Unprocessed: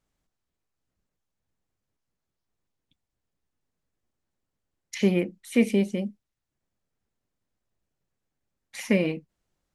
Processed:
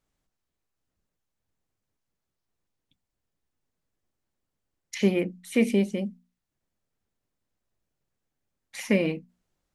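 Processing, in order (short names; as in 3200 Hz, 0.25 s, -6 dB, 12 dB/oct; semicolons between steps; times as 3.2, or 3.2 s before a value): notches 60/120/180/240 Hz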